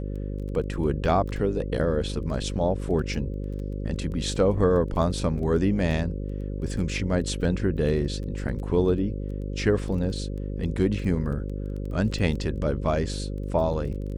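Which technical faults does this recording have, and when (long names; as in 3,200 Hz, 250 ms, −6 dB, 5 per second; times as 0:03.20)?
mains buzz 50 Hz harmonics 11 −31 dBFS
surface crackle 13 per second −34 dBFS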